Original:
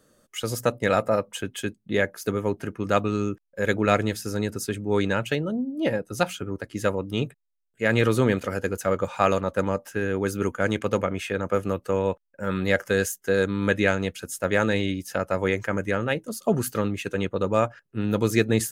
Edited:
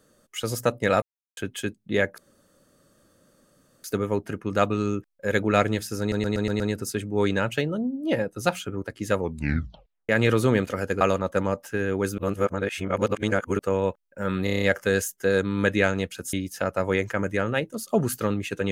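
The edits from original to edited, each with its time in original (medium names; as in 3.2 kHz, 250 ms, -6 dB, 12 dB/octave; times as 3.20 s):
1.02–1.37 s: mute
2.18 s: insert room tone 1.66 s
4.34 s: stutter 0.12 s, 6 plays
6.91 s: tape stop 0.92 s
8.75–9.23 s: delete
10.40–11.81 s: reverse
12.66 s: stutter 0.03 s, 7 plays
14.37–14.87 s: delete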